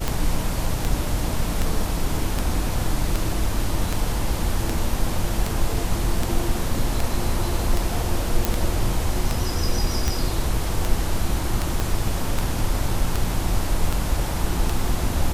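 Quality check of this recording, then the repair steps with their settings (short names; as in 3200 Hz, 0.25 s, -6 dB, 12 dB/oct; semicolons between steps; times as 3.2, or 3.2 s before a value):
tick 78 rpm
8.45 pop
11.8 pop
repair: de-click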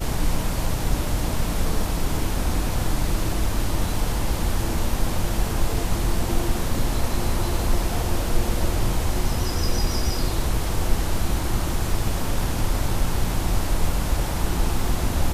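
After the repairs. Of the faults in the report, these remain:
11.8 pop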